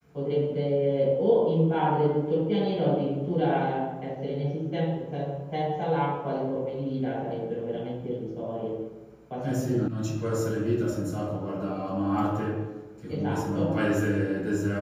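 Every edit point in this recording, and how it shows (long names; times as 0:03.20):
0:09.88: cut off before it has died away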